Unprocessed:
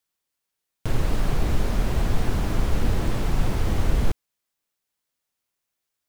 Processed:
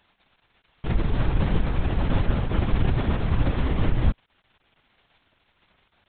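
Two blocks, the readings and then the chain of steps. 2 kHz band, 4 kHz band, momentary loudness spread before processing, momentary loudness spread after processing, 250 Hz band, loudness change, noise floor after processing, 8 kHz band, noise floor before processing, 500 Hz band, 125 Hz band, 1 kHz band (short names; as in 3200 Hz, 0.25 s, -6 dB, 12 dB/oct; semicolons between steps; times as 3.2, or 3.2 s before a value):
+0.5 dB, -2.0 dB, 4 LU, 3 LU, +2.0 dB, +1.0 dB, -70 dBFS, under -40 dB, -82 dBFS, 0.0 dB, +2.0 dB, 0.0 dB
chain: crackle 190/s -39 dBFS; LPC vocoder at 8 kHz whisper; gain -1.5 dB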